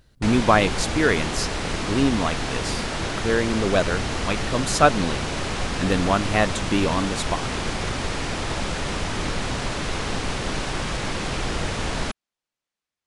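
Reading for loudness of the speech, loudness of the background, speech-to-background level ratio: -23.5 LUFS, -27.0 LUFS, 3.5 dB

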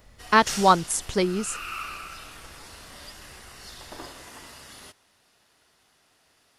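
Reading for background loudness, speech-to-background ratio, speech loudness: -38.0 LUFS, 15.5 dB, -22.5 LUFS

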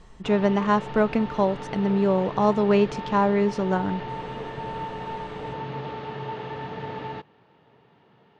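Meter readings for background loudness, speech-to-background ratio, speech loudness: -34.5 LUFS, 11.0 dB, -23.5 LUFS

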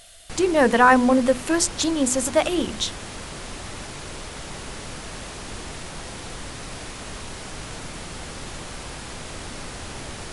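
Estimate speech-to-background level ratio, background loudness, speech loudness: 15.0 dB, -35.0 LUFS, -20.0 LUFS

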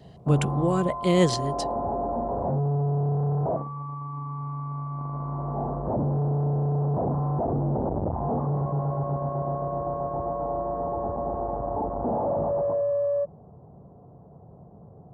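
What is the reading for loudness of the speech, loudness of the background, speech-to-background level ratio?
-25.0 LUFS, -28.0 LUFS, 3.0 dB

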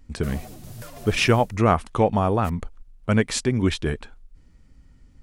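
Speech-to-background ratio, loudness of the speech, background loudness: 19.5 dB, -23.0 LUFS, -42.5 LUFS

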